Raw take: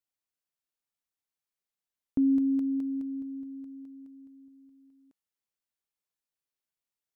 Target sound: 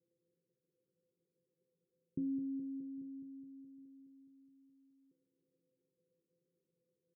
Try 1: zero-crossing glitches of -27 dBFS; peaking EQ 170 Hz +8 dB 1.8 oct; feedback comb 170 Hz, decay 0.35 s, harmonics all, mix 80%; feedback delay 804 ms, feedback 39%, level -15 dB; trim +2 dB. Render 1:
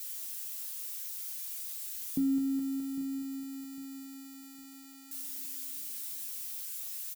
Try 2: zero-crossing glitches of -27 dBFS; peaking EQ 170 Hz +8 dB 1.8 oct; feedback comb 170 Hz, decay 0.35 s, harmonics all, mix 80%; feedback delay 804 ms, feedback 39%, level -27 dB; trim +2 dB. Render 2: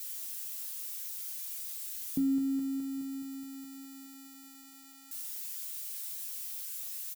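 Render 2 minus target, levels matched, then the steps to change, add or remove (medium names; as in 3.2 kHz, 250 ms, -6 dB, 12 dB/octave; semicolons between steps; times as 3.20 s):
500 Hz band -2.5 dB
add after zero-crossing glitches: rippled Chebyshev low-pass 530 Hz, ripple 9 dB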